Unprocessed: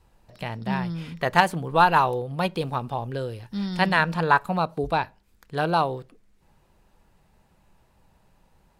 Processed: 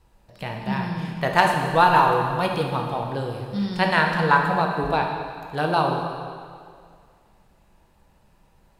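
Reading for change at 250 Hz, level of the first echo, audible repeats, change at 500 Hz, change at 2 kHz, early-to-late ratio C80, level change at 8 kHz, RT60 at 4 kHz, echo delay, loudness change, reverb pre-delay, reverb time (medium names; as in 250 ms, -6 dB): +2.0 dB, no echo, no echo, +2.5 dB, +2.5 dB, 5.0 dB, no reading, 2.0 s, no echo, +2.0 dB, 5 ms, 2.1 s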